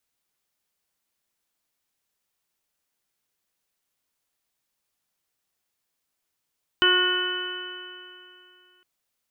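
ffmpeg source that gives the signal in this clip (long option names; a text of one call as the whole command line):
ffmpeg -f lavfi -i "aevalsrc='0.0708*pow(10,-3*t/2.71)*sin(2*PI*361.22*t)+0.0119*pow(10,-3*t/2.71)*sin(2*PI*723.73*t)+0.0447*pow(10,-3*t/2.71)*sin(2*PI*1088.83*t)+0.1*pow(10,-3*t/2.71)*sin(2*PI*1457.8*t)+0.0376*pow(10,-3*t/2.71)*sin(2*PI*1831.87*t)+0.00841*pow(10,-3*t/2.71)*sin(2*PI*2212.29*t)+0.0282*pow(10,-3*t/2.71)*sin(2*PI*2600.23*t)+0.133*pow(10,-3*t/2.71)*sin(2*PI*2996.85*t)':duration=2.01:sample_rate=44100" out.wav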